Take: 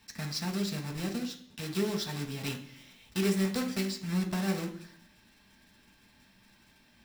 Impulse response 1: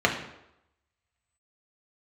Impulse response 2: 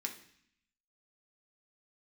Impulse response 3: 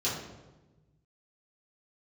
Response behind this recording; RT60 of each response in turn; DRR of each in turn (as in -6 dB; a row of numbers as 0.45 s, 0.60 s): 2; 0.85 s, 0.60 s, 1.2 s; 0.0 dB, 1.5 dB, -11.0 dB